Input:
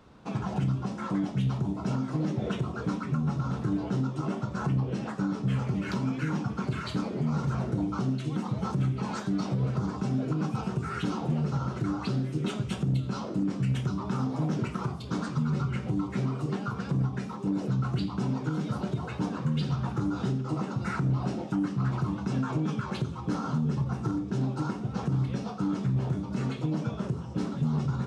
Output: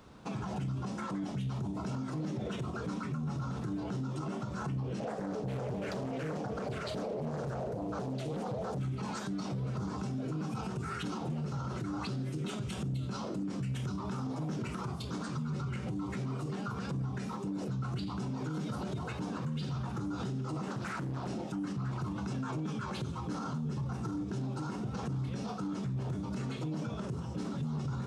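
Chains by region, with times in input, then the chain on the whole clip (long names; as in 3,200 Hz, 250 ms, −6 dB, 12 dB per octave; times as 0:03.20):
0:05.00–0:08.78: flat-topped bell 560 Hz +14 dB 1 octave + highs frequency-modulated by the lows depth 0.46 ms
0:20.68–0:21.28: high-pass filter 190 Hz 6 dB per octave + highs frequency-modulated by the lows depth 0.58 ms
whole clip: high-shelf EQ 6,200 Hz +7.5 dB; brickwall limiter −29.5 dBFS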